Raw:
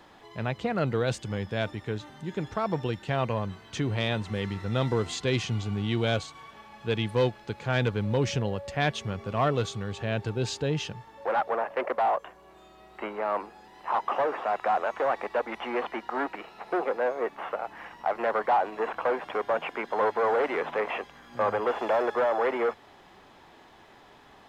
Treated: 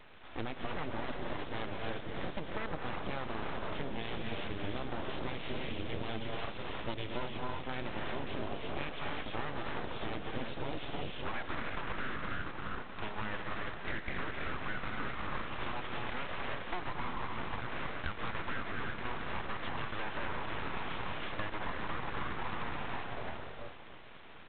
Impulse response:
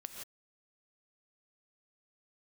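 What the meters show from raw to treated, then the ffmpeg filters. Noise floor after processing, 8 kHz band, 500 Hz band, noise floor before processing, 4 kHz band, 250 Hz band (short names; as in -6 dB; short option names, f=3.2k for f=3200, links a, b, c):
-45 dBFS, under -35 dB, -14.5 dB, -54 dBFS, -6.0 dB, -9.0 dB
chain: -filter_complex "[0:a]asplit=5[a][b][c][d][e];[b]adelay=330,afreqshift=-92,volume=-9.5dB[f];[c]adelay=660,afreqshift=-184,volume=-18.9dB[g];[d]adelay=990,afreqshift=-276,volume=-28.2dB[h];[e]adelay=1320,afreqshift=-368,volume=-37.6dB[i];[a][f][g][h][i]amix=inputs=5:normalize=0[j];[1:a]atrim=start_sample=2205,asetrate=22050,aresample=44100[k];[j][k]afir=irnorm=-1:irlink=0,acompressor=threshold=-33dB:ratio=12,aeval=exprs='0.141*(cos(1*acos(clip(val(0)/0.141,-1,1)))-cos(1*PI/2))+0.0251*(cos(2*acos(clip(val(0)/0.141,-1,1)))-cos(2*PI/2))':c=same,aeval=exprs='abs(val(0))':c=same,volume=1.5dB" -ar 8000 -c:a adpcm_g726 -b:a 24k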